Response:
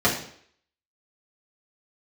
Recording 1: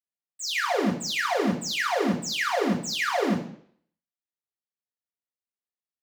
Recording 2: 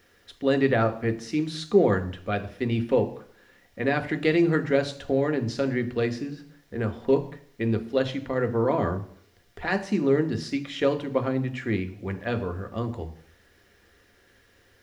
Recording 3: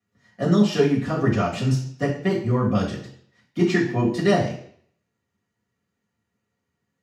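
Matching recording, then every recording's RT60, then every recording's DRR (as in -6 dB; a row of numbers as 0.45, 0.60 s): 3; 0.60, 0.60, 0.60 s; -1.5, 6.5, -7.0 dB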